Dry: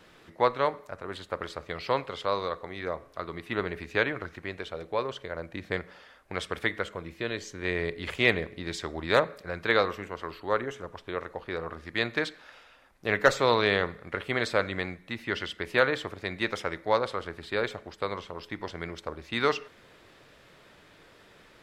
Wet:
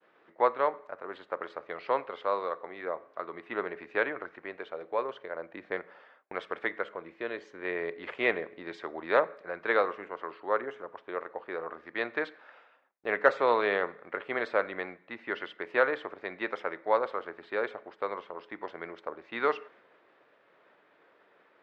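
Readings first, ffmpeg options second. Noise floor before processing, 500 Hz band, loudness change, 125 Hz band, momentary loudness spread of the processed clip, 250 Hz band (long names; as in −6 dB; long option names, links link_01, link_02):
−56 dBFS, −1.5 dB, −2.5 dB, −18.0 dB, 13 LU, −6.0 dB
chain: -af "highpass=380,agate=range=-33dB:threshold=-52dB:ratio=3:detection=peak,lowpass=1800"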